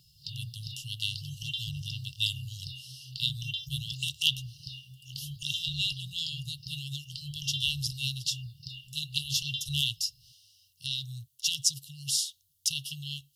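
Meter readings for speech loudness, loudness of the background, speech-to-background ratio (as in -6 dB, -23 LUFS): -32.0 LUFS, -40.0 LUFS, 8.0 dB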